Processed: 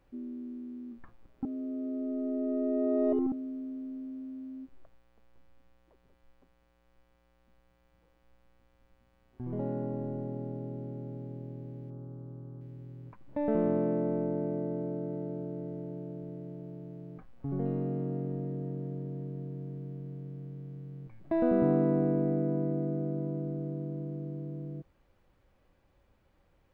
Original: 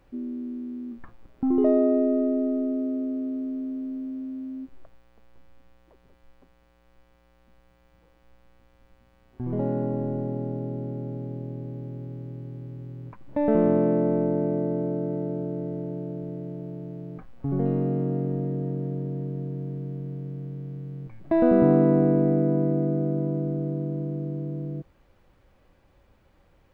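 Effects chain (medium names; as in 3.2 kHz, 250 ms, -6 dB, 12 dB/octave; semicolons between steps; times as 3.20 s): 1.45–3.32 s: reverse; 11.90–12.61 s: resonant high shelf 1.6 kHz -8.5 dB, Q 3; trim -7.5 dB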